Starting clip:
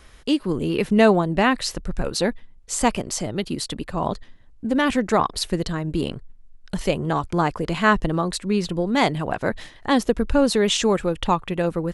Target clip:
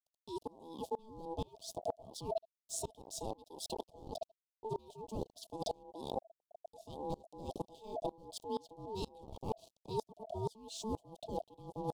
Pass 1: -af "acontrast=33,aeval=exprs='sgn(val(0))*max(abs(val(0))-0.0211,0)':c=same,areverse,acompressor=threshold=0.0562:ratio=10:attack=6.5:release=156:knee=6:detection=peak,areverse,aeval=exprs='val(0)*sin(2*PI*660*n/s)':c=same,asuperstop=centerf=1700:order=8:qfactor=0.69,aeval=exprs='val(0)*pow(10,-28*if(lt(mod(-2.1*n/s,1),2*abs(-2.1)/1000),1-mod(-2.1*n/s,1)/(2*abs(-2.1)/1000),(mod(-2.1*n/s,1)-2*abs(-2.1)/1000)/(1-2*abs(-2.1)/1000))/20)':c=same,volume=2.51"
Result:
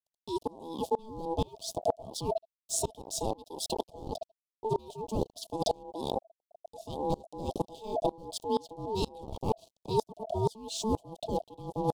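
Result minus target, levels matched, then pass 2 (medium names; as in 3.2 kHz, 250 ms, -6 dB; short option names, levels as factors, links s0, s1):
compression: peak gain reduction -9.5 dB
-af "acontrast=33,aeval=exprs='sgn(val(0))*max(abs(val(0))-0.0211,0)':c=same,areverse,acompressor=threshold=0.0168:ratio=10:attack=6.5:release=156:knee=6:detection=peak,areverse,aeval=exprs='val(0)*sin(2*PI*660*n/s)':c=same,asuperstop=centerf=1700:order=8:qfactor=0.69,aeval=exprs='val(0)*pow(10,-28*if(lt(mod(-2.1*n/s,1),2*abs(-2.1)/1000),1-mod(-2.1*n/s,1)/(2*abs(-2.1)/1000),(mod(-2.1*n/s,1)-2*abs(-2.1)/1000)/(1-2*abs(-2.1)/1000))/20)':c=same,volume=2.51"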